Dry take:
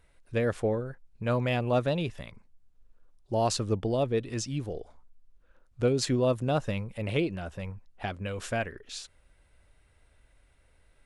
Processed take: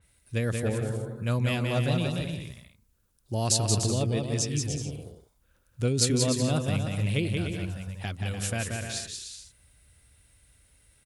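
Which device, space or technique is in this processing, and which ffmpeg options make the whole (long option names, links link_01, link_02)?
smiley-face EQ: -af "highpass=80,aemphasis=mode=production:type=cd,lowshelf=frequency=150:gain=8,equalizer=frequency=670:width_type=o:width=2.8:gain=-8,highshelf=frequency=9800:gain=9,aecho=1:1:180|297|373|422.5|454.6:0.631|0.398|0.251|0.158|0.1,adynamicequalizer=threshold=0.00562:dfrequency=4000:dqfactor=0.7:tfrequency=4000:tqfactor=0.7:attack=5:release=100:ratio=0.375:range=1.5:mode=cutabove:tftype=highshelf,volume=1.5dB"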